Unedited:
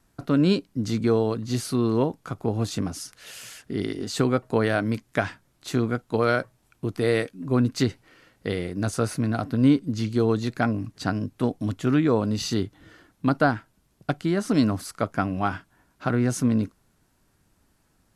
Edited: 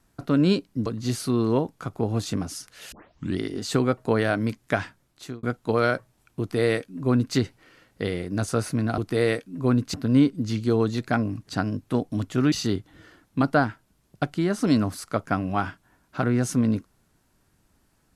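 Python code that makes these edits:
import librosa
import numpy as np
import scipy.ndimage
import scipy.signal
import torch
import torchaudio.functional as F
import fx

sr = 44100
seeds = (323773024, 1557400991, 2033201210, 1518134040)

y = fx.edit(x, sr, fx.cut(start_s=0.86, length_s=0.45),
    fx.tape_start(start_s=3.37, length_s=0.46),
    fx.fade_out_span(start_s=5.23, length_s=0.65, curve='qsin'),
    fx.duplicate(start_s=6.85, length_s=0.96, to_s=9.43),
    fx.cut(start_s=12.01, length_s=0.38), tone=tone)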